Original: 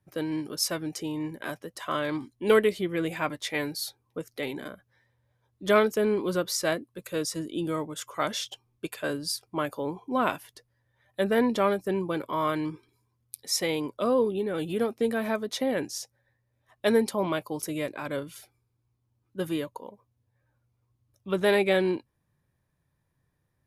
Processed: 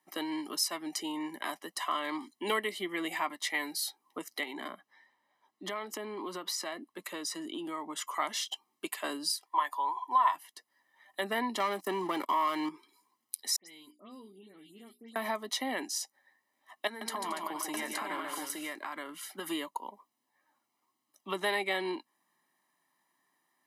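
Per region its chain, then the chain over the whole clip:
4.43–8.07 s: treble shelf 5.2 kHz -8.5 dB + compression, threshold -33 dBFS
9.45–10.35 s: high-pass 570 Hz + small resonant body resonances 1/1.8/3.4 kHz, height 16 dB, ringing for 30 ms
11.60–12.69 s: waveshaping leveller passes 2 + compression 2.5:1, threshold -22 dBFS
13.56–15.16 s: amplifier tone stack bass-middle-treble 10-0-1 + hum notches 60/120/180/240/300/360/420 Hz + phase dispersion highs, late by 115 ms, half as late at 3 kHz
16.87–19.48 s: peaking EQ 1.5 kHz +8 dB 0.62 oct + compression 16:1, threshold -31 dBFS + multi-tap echo 142/225/286/870 ms -5/-14.5/-9/-3.5 dB
whole clip: Bessel high-pass 420 Hz, order 8; comb 1 ms, depth 76%; compression 2:1, threshold -41 dBFS; trim +5 dB

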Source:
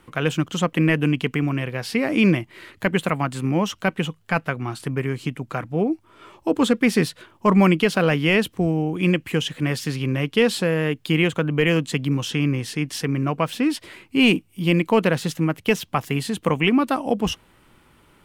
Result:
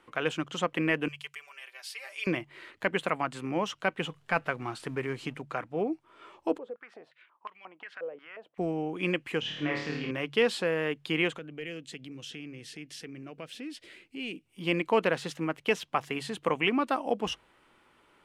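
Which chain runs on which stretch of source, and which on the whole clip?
1.08–2.27 s: high-pass 460 Hz 24 dB/octave + differentiator + comb 5.1 ms, depth 95%
4.00–5.42 s: companding laws mixed up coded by mu + bass shelf 140 Hz +5.5 dB
6.58–8.58 s: compression 12:1, threshold -21 dBFS + step-sequenced band-pass 5.6 Hz 510–2900 Hz
9.40–10.11 s: distance through air 160 m + flutter echo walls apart 4.6 m, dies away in 0.69 s
11.38–14.46 s: peaking EQ 990 Hz -15 dB 1.1 oct + compression 2:1, threshold -34 dBFS
whole clip: low-pass 10 kHz 12 dB/octave; tone controls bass -13 dB, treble -5 dB; de-hum 47.64 Hz, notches 3; trim -5 dB

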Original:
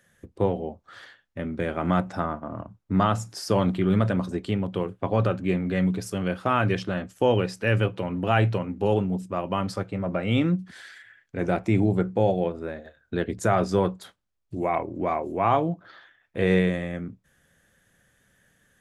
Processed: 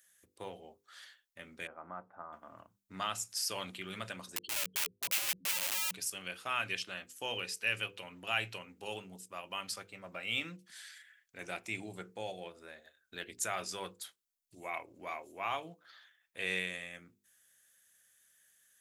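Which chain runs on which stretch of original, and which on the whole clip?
1.67–2.33 s: block-companded coder 7-bit + low-pass 1.2 kHz 24 dB/octave + bass shelf 460 Hz -8 dB
4.36–5.91 s: spectral contrast enhancement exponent 3.8 + integer overflow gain 25.5 dB
whole clip: pre-emphasis filter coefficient 0.97; hum notches 50/100/150/200/250/300/350/400/450/500 Hz; dynamic bell 2.6 kHz, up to +7 dB, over -60 dBFS, Q 2.7; trim +2.5 dB

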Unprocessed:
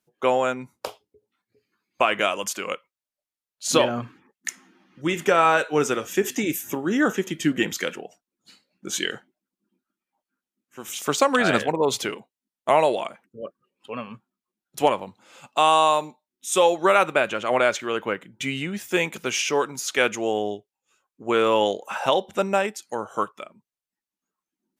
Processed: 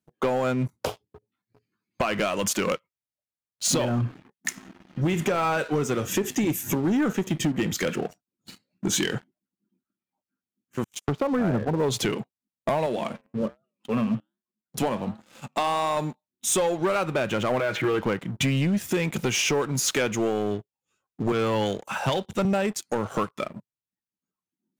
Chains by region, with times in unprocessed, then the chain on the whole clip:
10.84–11.83 s: gate -31 dBFS, range -35 dB + low-pass that closes with the level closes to 1.1 kHz, closed at -20 dBFS
12.86–15.97 s: flange 1.3 Hz, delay 6.6 ms, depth 3.8 ms, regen -89% + high-pass 100 Hz + peaking EQ 220 Hz +8.5 dB 0.25 oct
17.59–18.00 s: Chebyshev low-pass 2.4 kHz + comb 6.2 ms, depth 75% + compression 3:1, threshold -23 dBFS
21.32–22.45 s: peaking EQ 520 Hz -5 dB 2.2 oct + three bands expanded up and down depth 70%
whole clip: peaking EQ 110 Hz +15 dB 2.4 oct; compression 10:1, threshold -26 dBFS; waveshaping leveller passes 3; trim -3.5 dB

